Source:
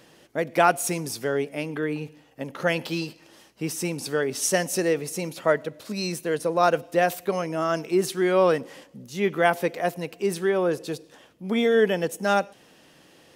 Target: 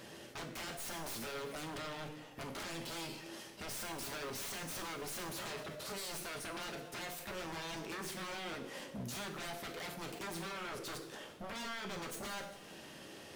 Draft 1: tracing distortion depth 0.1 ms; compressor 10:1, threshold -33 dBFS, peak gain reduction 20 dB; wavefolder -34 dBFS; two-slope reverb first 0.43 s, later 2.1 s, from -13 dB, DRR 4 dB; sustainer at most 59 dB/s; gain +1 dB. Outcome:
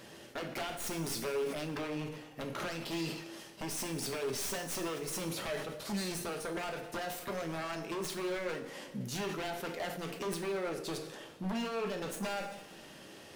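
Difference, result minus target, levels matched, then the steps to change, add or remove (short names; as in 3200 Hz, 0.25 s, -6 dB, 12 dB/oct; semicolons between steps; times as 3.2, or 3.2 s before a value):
wavefolder: distortion -16 dB
change: wavefolder -40.5 dBFS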